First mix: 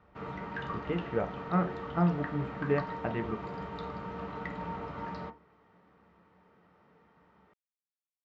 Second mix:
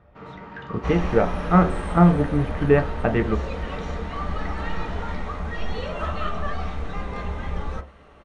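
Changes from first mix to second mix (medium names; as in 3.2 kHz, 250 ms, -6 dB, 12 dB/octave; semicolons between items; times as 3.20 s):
speech +12.0 dB; second sound: unmuted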